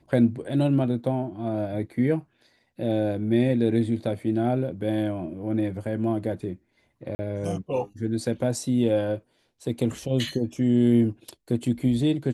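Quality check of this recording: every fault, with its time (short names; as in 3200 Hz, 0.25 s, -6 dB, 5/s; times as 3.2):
7.15–7.19 gap 40 ms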